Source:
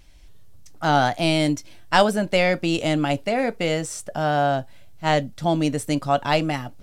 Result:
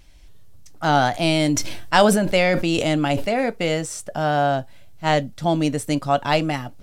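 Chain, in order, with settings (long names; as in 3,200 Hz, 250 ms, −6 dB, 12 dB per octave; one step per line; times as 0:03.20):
0:01.12–0:03.34: level that may fall only so fast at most 37 dB per second
level +1 dB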